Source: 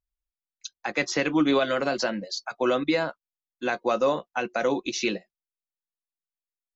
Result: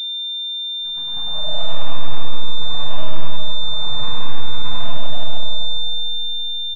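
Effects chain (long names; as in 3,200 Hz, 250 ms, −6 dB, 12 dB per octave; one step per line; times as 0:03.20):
fade in at the beginning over 2.15 s
parametric band 430 Hz +10.5 dB 1.9 octaves
full-wave rectification
flanger 0.77 Hz, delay 7.9 ms, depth 7.3 ms, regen −54%
soft clipping −14 dBFS, distortion −16 dB
single-tap delay 97 ms −5.5 dB
convolution reverb RT60 3.3 s, pre-delay 45 ms, DRR −7.5 dB
switching amplifier with a slow clock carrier 3,600 Hz
level −12.5 dB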